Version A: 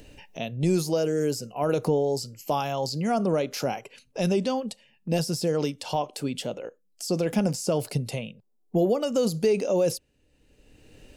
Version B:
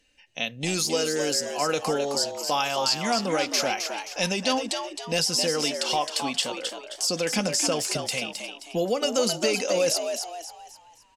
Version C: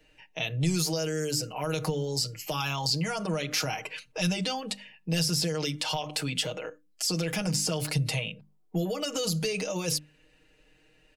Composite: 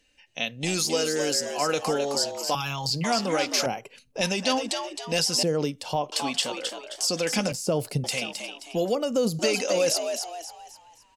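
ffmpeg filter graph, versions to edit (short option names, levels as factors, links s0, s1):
-filter_complex "[0:a]asplit=4[s0][s1][s2][s3];[1:a]asplit=6[s4][s5][s6][s7][s8][s9];[s4]atrim=end=2.552[s10];[2:a]atrim=start=2.548:end=3.042[s11];[s5]atrim=start=3.038:end=3.662[s12];[s0]atrim=start=3.658:end=4.212[s13];[s6]atrim=start=4.208:end=5.432[s14];[s1]atrim=start=5.428:end=6.122[s15];[s7]atrim=start=6.118:end=7.522[s16];[s2]atrim=start=7.518:end=8.042[s17];[s8]atrim=start=8.038:end=8.952[s18];[s3]atrim=start=8.948:end=9.392[s19];[s9]atrim=start=9.388[s20];[s10][s11]acrossfade=d=0.004:c1=hsin:c2=hsin[s21];[s21][s12]acrossfade=d=0.004:c1=hsin:c2=hsin[s22];[s22][s13]acrossfade=d=0.004:c1=hsin:c2=hsin[s23];[s23][s14]acrossfade=d=0.004:c1=hsin:c2=hsin[s24];[s24][s15]acrossfade=d=0.004:c1=hsin:c2=hsin[s25];[s25][s16]acrossfade=d=0.004:c1=hsin:c2=hsin[s26];[s26][s17]acrossfade=d=0.004:c1=hsin:c2=hsin[s27];[s27][s18]acrossfade=d=0.004:c1=hsin:c2=hsin[s28];[s28][s19]acrossfade=d=0.004:c1=hsin:c2=hsin[s29];[s29][s20]acrossfade=d=0.004:c1=hsin:c2=hsin"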